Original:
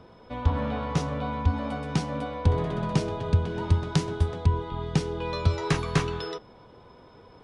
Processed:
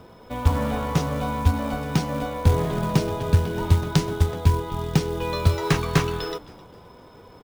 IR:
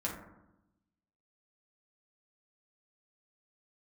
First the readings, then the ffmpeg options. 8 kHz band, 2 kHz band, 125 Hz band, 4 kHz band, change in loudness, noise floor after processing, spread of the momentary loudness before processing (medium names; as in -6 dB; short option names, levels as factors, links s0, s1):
+6.0 dB, +4.0 dB, +4.0 dB, +4.5 dB, +4.0 dB, -48 dBFS, 6 LU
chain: -filter_complex "[0:a]acrusher=bits=5:mode=log:mix=0:aa=0.000001,asplit=4[s0][s1][s2][s3];[s1]adelay=261,afreqshift=-120,volume=0.0891[s4];[s2]adelay=522,afreqshift=-240,volume=0.0302[s5];[s3]adelay=783,afreqshift=-360,volume=0.0104[s6];[s0][s4][s5][s6]amix=inputs=4:normalize=0,volume=1.58"